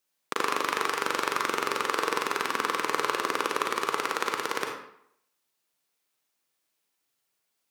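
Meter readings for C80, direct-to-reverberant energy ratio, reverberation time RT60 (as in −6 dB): 6.5 dB, 1.5 dB, 0.70 s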